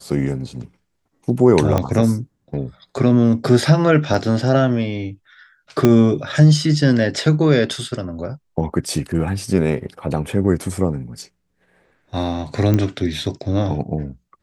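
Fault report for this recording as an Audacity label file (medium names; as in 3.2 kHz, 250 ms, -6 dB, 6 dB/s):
1.780000	1.780000	pop -6 dBFS
4.140000	4.140000	dropout 4 ms
5.850000	5.850000	pop -2 dBFS
8.880000	8.880000	dropout 3.5 ms
12.740000	12.740000	pop -7 dBFS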